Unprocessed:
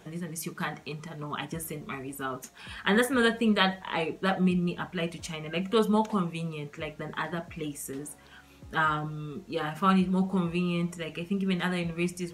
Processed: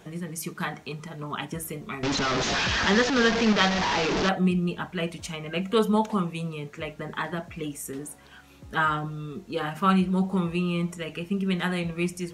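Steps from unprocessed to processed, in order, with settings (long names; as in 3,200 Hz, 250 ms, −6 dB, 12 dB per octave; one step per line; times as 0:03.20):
0:02.03–0:04.29: linear delta modulator 32 kbit/s, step −21 dBFS
level +2 dB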